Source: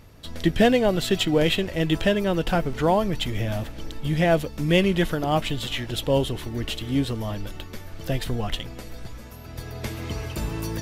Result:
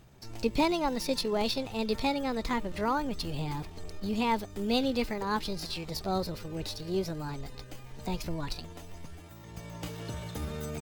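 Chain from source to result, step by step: dynamic EQ 510 Hz, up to -8 dB, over -39 dBFS, Q 5.3; pitch shift +5.5 st; gain -7.5 dB

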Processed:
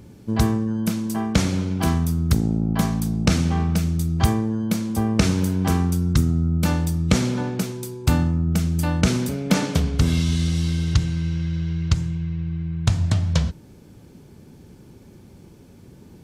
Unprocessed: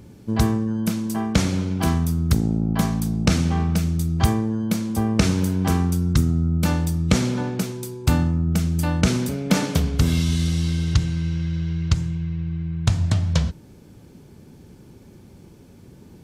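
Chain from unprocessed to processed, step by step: 9.54–10.55 Bessel low-pass 10000 Hz, order 2

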